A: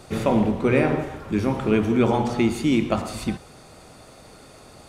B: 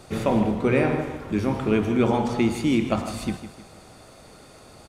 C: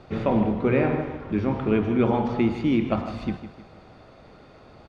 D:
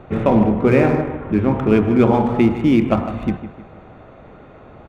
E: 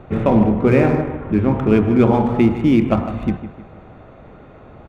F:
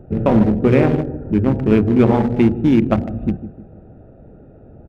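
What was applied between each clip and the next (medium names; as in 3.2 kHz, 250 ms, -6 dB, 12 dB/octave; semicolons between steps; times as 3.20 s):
feedback delay 155 ms, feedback 41%, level -12 dB; trim -1.5 dB
distance through air 250 m
local Wiener filter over 9 samples; trim +7.5 dB
bass shelf 210 Hz +3.5 dB; trim -1 dB
local Wiener filter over 41 samples; trim +1 dB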